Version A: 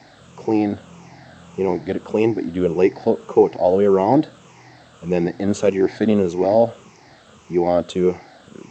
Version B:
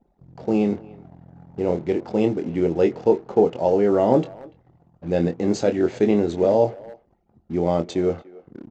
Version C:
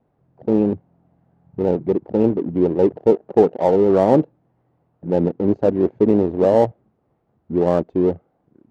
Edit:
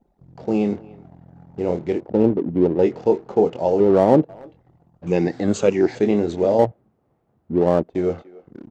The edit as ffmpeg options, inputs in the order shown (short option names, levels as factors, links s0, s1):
-filter_complex "[2:a]asplit=3[s0][s1][s2];[1:a]asplit=5[s3][s4][s5][s6][s7];[s3]atrim=end=2.07[s8];[s0]atrim=start=1.97:end=2.88[s9];[s4]atrim=start=2.78:end=3.802[s10];[s1]atrim=start=3.798:end=4.292[s11];[s5]atrim=start=4.288:end=5.072[s12];[0:a]atrim=start=5.068:end=5.952[s13];[s6]atrim=start=5.948:end=6.592[s14];[s2]atrim=start=6.588:end=7.952[s15];[s7]atrim=start=7.948[s16];[s8][s9]acrossfade=d=0.1:c1=tri:c2=tri[s17];[s17][s10]acrossfade=d=0.1:c1=tri:c2=tri[s18];[s18][s11]acrossfade=d=0.004:c1=hsin:c2=hsin[s19];[s19][s12]acrossfade=d=0.004:c1=hsin:c2=hsin[s20];[s20][s13]acrossfade=d=0.004:c1=hsin:c2=hsin[s21];[s21][s14]acrossfade=d=0.004:c1=hsin:c2=hsin[s22];[s22][s15]acrossfade=d=0.004:c1=hsin:c2=hsin[s23];[s23][s16]acrossfade=d=0.004:c1=hsin:c2=hsin"